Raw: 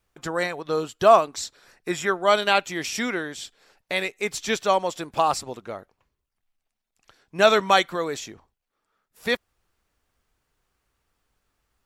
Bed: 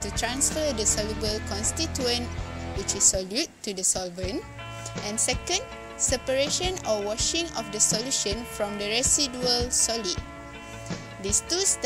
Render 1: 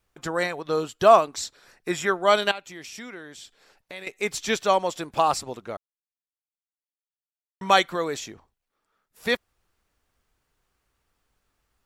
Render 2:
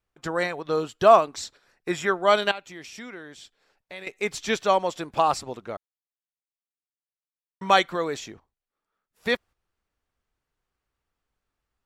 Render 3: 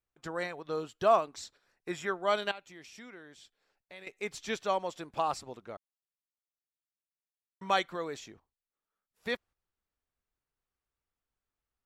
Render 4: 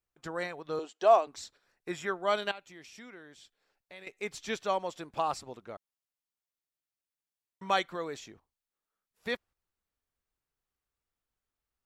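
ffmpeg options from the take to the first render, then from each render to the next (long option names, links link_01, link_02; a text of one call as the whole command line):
ffmpeg -i in.wav -filter_complex "[0:a]asettb=1/sr,asplit=3[link_01][link_02][link_03];[link_01]atrim=end=2.514[link_04];[link_02]atrim=start=2.51:end=4.07,asetpts=PTS-STARTPTS,afade=type=in:duration=0.004:curve=qsin,afade=type=out:start_time=1.556:duration=0.004:curve=qsin,acompressor=threshold=-46dB:ratio=2:attack=3.2:release=140:knee=1:detection=peak[link_05];[link_03]atrim=start=4.066[link_06];[link_04][link_05]acrossfade=duration=0.004:curve1=hsin:curve2=qsin[link_07];[link_07][link_06]acrossfade=duration=0.004:curve1=qsin:curve2=hsin,asplit=3[link_08][link_09][link_10];[link_08]atrim=end=5.77,asetpts=PTS-STARTPTS,afade=type=out:start_time=5.766:duration=0.004:curve=hsin[link_11];[link_09]atrim=start=5.77:end=7.61,asetpts=PTS-STARTPTS,volume=0[link_12];[link_10]atrim=start=7.61,asetpts=PTS-STARTPTS,afade=type=in:duration=0.004:curve=hsin[link_13];[link_11][link_12][link_13]concat=n=3:v=0:a=1" out.wav
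ffmpeg -i in.wav -af "agate=range=-8dB:threshold=-45dB:ratio=16:detection=peak,highshelf=frequency=6900:gain=-8" out.wav
ffmpeg -i in.wav -af "volume=-9.5dB" out.wav
ffmpeg -i in.wav -filter_complex "[0:a]asettb=1/sr,asplit=3[link_01][link_02][link_03];[link_01]atrim=end=0.794[link_04];[link_02]atrim=start=0.79:end=1.27,asetpts=PTS-STARTPTS,afade=type=in:duration=0.004:curve=qsin,afade=type=out:start_time=0.476:duration=0.004:curve=qsin,highpass=frequency=280:width=0.5412,highpass=frequency=280:width=1.3066,equalizer=frequency=750:width_type=q:width=4:gain=6,equalizer=frequency=1300:width_type=q:width=4:gain=-5,equalizer=frequency=6500:width_type=q:width=4:gain=3,lowpass=frequency=8900:width=0.5412,lowpass=frequency=8900:width=1.3066[link_05];[link_03]atrim=start=1.266[link_06];[link_04][link_05]acrossfade=duration=0.004:curve1=hsin:curve2=qsin[link_07];[link_07][link_06]acrossfade=duration=0.004:curve1=qsin:curve2=hsin" out.wav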